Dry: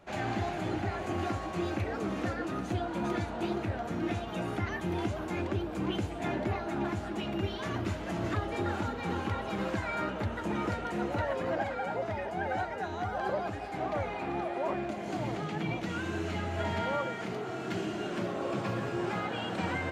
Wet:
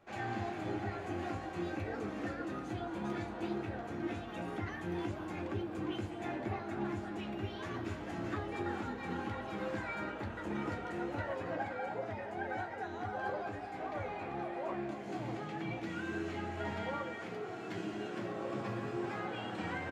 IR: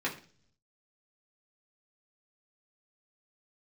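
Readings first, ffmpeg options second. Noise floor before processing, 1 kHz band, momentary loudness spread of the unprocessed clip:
-38 dBFS, -5.5 dB, 2 LU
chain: -filter_complex "[0:a]flanger=delay=8.7:depth=6.9:regen=-51:speed=0.16:shape=sinusoidal,aecho=1:1:217:0.2,asplit=2[a][b];[1:a]atrim=start_sample=2205,lowpass=9k[c];[b][c]afir=irnorm=-1:irlink=0,volume=-8.5dB[d];[a][d]amix=inputs=2:normalize=0,volume=-5.5dB"

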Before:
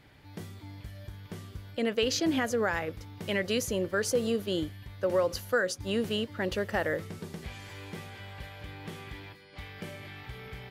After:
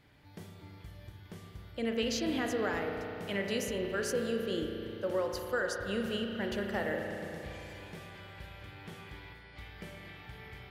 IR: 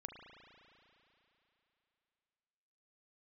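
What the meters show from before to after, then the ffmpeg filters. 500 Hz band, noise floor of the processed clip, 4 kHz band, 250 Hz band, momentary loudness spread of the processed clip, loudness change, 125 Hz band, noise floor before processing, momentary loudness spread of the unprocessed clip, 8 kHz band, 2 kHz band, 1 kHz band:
-4.0 dB, -54 dBFS, -4.5 dB, -3.0 dB, 17 LU, -3.5 dB, -5.0 dB, -53 dBFS, 17 LU, -6.0 dB, -4.0 dB, -3.5 dB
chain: -filter_complex "[1:a]atrim=start_sample=2205[a];[0:a][a]afir=irnorm=-1:irlink=0"

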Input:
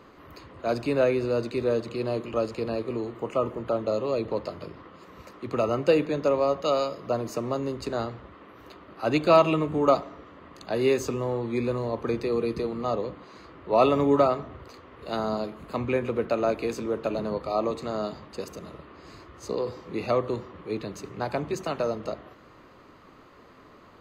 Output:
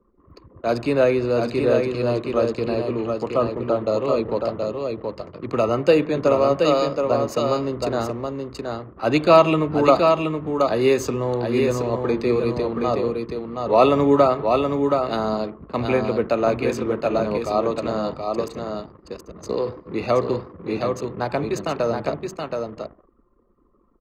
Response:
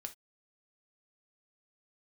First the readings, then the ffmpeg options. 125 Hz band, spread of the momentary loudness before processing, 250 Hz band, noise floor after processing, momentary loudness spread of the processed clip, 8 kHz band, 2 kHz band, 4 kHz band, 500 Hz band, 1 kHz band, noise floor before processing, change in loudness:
+6.5 dB, 16 LU, +6.5 dB, -57 dBFS, 12 LU, +5.5 dB, +6.0 dB, +6.0 dB, +6.5 dB, +6.5 dB, -52 dBFS, +5.5 dB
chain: -af "anlmdn=0.251,aecho=1:1:724:0.596,volume=5dB"

